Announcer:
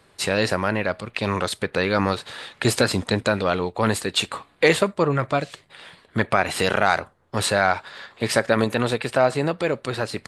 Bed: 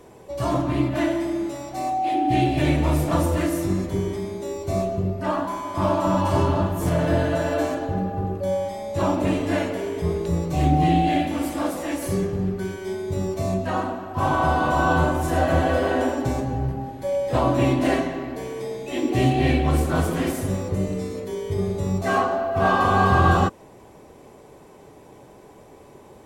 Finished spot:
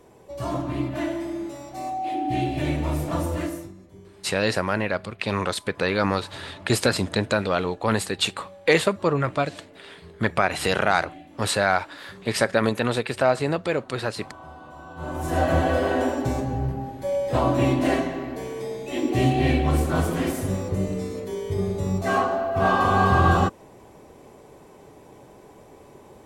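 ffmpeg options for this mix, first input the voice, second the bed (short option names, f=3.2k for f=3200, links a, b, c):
-filter_complex "[0:a]adelay=4050,volume=-1.5dB[a];[1:a]volume=16.5dB,afade=t=out:st=3.44:d=0.28:silence=0.133352,afade=t=in:st=14.96:d=0.44:silence=0.0841395[b];[a][b]amix=inputs=2:normalize=0"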